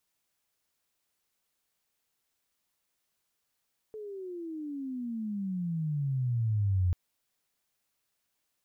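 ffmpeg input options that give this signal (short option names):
-f lavfi -i "aevalsrc='pow(10,(-23+15.5*(t/2.99-1))/20)*sin(2*PI*438*2.99/(-28*log(2)/12)*(exp(-28*log(2)/12*t/2.99)-1))':d=2.99:s=44100"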